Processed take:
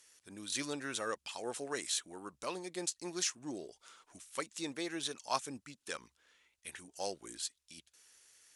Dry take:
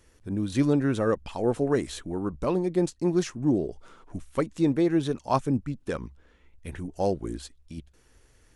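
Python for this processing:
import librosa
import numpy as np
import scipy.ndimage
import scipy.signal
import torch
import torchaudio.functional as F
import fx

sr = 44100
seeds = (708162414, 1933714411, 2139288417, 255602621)

y = fx.bandpass_q(x, sr, hz=7900.0, q=0.61)
y = F.gain(torch.from_numpy(y), 6.0).numpy()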